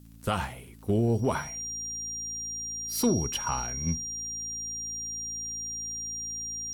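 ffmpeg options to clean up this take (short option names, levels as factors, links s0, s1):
-af "adeclick=t=4,bandreject=f=55.8:t=h:w=4,bandreject=f=111.6:t=h:w=4,bandreject=f=167.4:t=h:w=4,bandreject=f=223.2:t=h:w=4,bandreject=f=279:t=h:w=4,bandreject=f=5700:w=30,agate=range=0.0891:threshold=0.0282"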